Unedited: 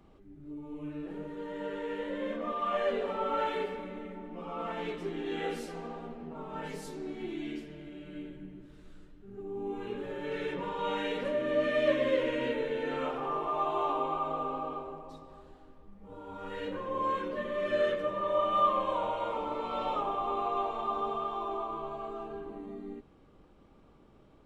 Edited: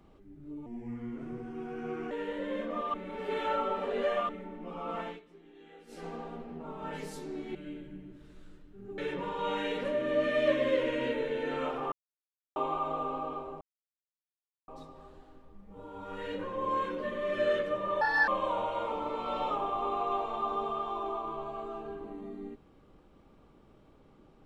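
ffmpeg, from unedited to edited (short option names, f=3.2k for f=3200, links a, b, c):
-filter_complex "[0:a]asplit=14[a][b][c][d][e][f][g][h][i][j][k][l][m][n];[a]atrim=end=0.664[o];[b]atrim=start=0.66:end=1.82,asetpts=PTS-STARTPTS,asetrate=35280,aresample=44100[p];[c]atrim=start=1.816:end=2.652[q];[d]atrim=start=2.648:end=4.002,asetpts=PTS-STARTPTS,areverse[r];[e]atrim=start=3.998:end=4.91,asetpts=PTS-STARTPTS,afade=t=out:st=0.732:d=0.18:silence=0.105925[s];[f]atrim=start=4.91:end=5.58,asetpts=PTS-STARTPTS,volume=-19.5dB[t];[g]atrim=start=5.58:end=7.262,asetpts=PTS-STARTPTS,afade=t=in:d=0.18:silence=0.105925[u];[h]atrim=start=8.038:end=9.472[v];[i]atrim=start=10.378:end=13.32,asetpts=PTS-STARTPTS,afade=t=out:st=2.938:d=0.004:c=hsin[w];[j]atrim=start=13.32:end=13.96,asetpts=PTS-STARTPTS,volume=0[x];[k]atrim=start=13.96:end=15.01,asetpts=PTS-STARTPTS,afade=t=in:d=0.004:c=hsin,afade=t=out:st=1.046:d=0.004:c=hsin,apad=pad_dur=1.07[y];[l]atrim=start=15.01:end=18.344,asetpts=PTS-STARTPTS,afade=t=in:d=0.004:c=hsin[z];[m]atrim=start=18.34:end=18.73,asetpts=PTS-STARTPTS,asetrate=64386,aresample=44100,atrim=end_sample=11780,asetpts=PTS-STARTPTS[aa];[n]atrim=start=18.726[ab];[o][p]acrossfade=d=0.004:c1=hsin:c2=hsin[ac];[ac][q]acrossfade=d=0.004:c1=hsin:c2=hsin[ad];[ad][r]acrossfade=d=0.004:c1=hsin:c2=hsin[ae];[s][t][u]concat=n=3:v=0:a=1[af];[ae][af]acrossfade=d=0.004:c1=hsin:c2=hsin[ag];[ag][v]acrossfade=d=0.004:c1=hsin:c2=hsin[ah];[w][x][y][z]concat=n=4:v=0:a=1[ai];[ah][ai]acrossfade=d=0.004:c1=hsin:c2=hsin[aj];[aj][aa]acrossfade=d=0.004:c1=hsin:c2=hsin[ak];[ak][ab]acrossfade=d=0.004:c1=hsin:c2=hsin"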